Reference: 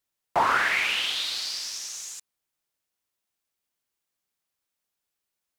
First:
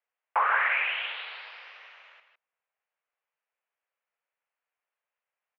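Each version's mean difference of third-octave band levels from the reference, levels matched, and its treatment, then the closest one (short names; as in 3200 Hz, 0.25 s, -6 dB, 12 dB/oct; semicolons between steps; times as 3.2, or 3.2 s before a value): 14.5 dB: compressor 1.5:1, threshold -29 dBFS, peak gain reduction 4 dB; echo 0.158 s -8.5 dB; mistuned SSB +160 Hz 310–2500 Hz; gain +1.5 dB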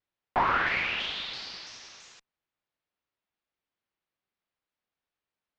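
8.5 dB: one diode to ground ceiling -22.5 dBFS; Gaussian blur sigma 2.2 samples; shaped vibrato saw down 3 Hz, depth 100 cents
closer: second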